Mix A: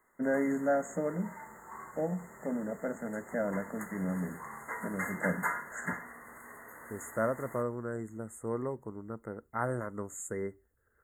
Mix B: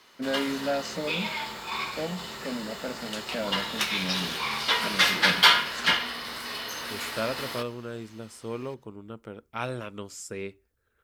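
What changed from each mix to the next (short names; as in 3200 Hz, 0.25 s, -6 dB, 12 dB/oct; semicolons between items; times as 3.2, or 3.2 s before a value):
background +11.5 dB; master: remove brick-wall FIR band-stop 2100–6500 Hz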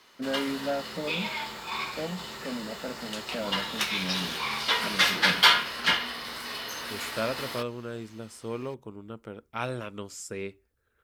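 first voice: add air absorption 400 m; reverb: off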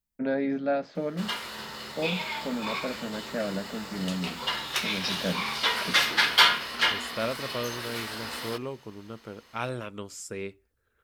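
first voice +3.5 dB; background: entry +0.95 s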